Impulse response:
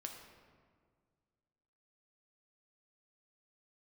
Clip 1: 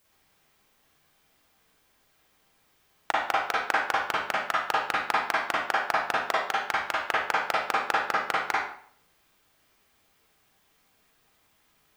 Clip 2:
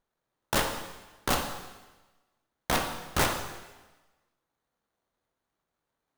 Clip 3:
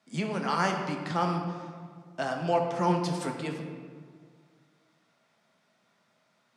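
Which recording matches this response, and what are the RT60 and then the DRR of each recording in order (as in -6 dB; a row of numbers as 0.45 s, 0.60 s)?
3; 0.55 s, 1.2 s, 1.8 s; -6.5 dB, 3.5 dB, 2.0 dB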